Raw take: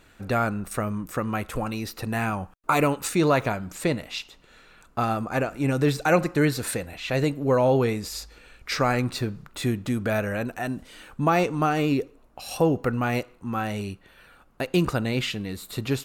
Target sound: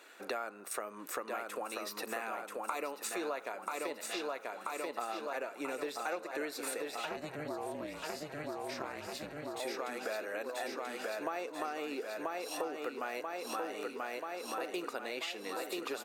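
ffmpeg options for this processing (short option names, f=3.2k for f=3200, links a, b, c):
-filter_complex "[0:a]highpass=f=360:w=0.5412,highpass=f=360:w=1.3066,bandreject=f=3.1k:w=24,aecho=1:1:985|1970|2955|3940|4925|5910|6895|7880:0.562|0.332|0.196|0.115|0.0681|0.0402|0.0237|0.014,acompressor=threshold=-38dB:ratio=5,asettb=1/sr,asplit=3[a][b][c];[a]atrim=end=7.054[d];[b]atrim=start=7.05:end=9.6,asetpts=PTS-STARTPTS,afade=t=in:d=0.004:c=qsin,afade=t=out:st=2.546:d=0.004:c=qsin,aeval=exprs='val(0)*sin(2*PI*150*n/s)':c=same[e];[c]atrim=start=9.596[f];[d][e]acrossfade=d=0.004:c1=hsin:c2=qsin[g];[g][f]acrossfade=d=0.004:c1=qsin:c2=hsin,volume=1dB"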